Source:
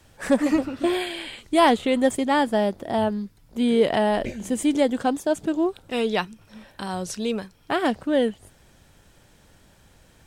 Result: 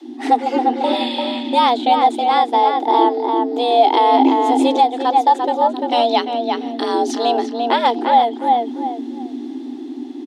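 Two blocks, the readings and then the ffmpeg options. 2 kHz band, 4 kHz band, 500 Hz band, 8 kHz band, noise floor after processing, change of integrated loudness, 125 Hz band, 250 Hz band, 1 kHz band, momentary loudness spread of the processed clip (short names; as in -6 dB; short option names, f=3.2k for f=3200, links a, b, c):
+1.0 dB, +8.5 dB, +4.5 dB, n/a, -31 dBFS, +7.0 dB, under -10 dB, +3.0 dB, +14.5 dB, 12 LU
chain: -filter_complex "[0:a]asplit=2[a][b];[b]adelay=345,lowpass=f=2.5k:p=1,volume=-5dB,asplit=2[c][d];[d]adelay=345,lowpass=f=2.5k:p=1,volume=0.23,asplit=2[e][f];[f]adelay=345,lowpass=f=2.5k:p=1,volume=0.23[g];[a][c][e][g]amix=inputs=4:normalize=0,dynaudnorm=f=250:g=13:m=4dB,firequalizer=gain_entry='entry(130,0);entry(250,-19);entry(570,2);entry(810,-12);entry(2200,-8);entry(3200,2);entry(7600,-8);entry(12000,-6)':delay=0.05:min_phase=1,asplit=2[h][i];[i]acompressor=threshold=-30dB:ratio=6,volume=-3dB[j];[h][j]amix=inputs=2:normalize=0,alimiter=limit=-11.5dB:level=0:latency=1:release=477,aemphasis=mode=reproduction:type=bsi,afreqshift=240,volume=6.5dB"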